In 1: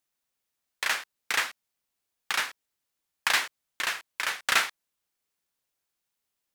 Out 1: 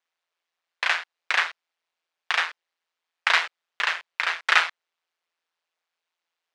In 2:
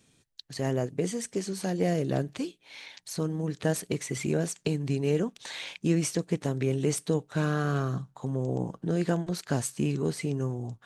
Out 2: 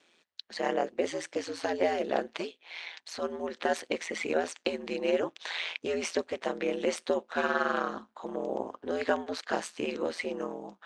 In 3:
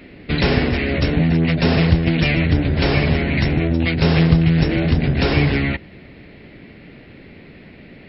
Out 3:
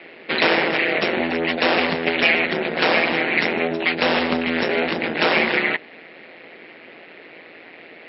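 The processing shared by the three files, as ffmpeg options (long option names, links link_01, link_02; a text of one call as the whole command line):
ffmpeg -i in.wav -af "aeval=exprs='val(0)*sin(2*PI*84*n/s)':channel_layout=same,highpass=550,lowpass=3600,volume=8.5dB" out.wav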